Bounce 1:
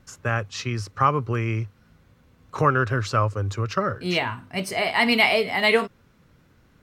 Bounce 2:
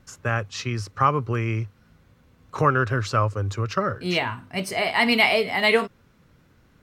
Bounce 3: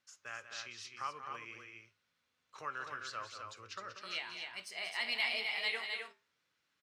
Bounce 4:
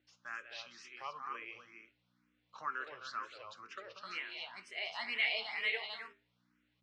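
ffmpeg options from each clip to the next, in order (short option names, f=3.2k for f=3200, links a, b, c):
-af anull
-af "flanger=delay=8.6:depth=4.1:regen=79:speed=1.1:shape=triangular,bandpass=f=4.2k:t=q:w=0.72:csg=0,aecho=1:1:186.6|259.5:0.316|0.562,volume=-7.5dB"
-filter_complex "[0:a]aeval=exprs='val(0)+0.000447*(sin(2*PI*60*n/s)+sin(2*PI*2*60*n/s)/2+sin(2*PI*3*60*n/s)/3+sin(2*PI*4*60*n/s)/4+sin(2*PI*5*60*n/s)/5)':c=same,highpass=220,lowpass=4k,asplit=2[a][b];[b]afreqshift=2.1[c];[a][c]amix=inputs=2:normalize=1,volume=3dB"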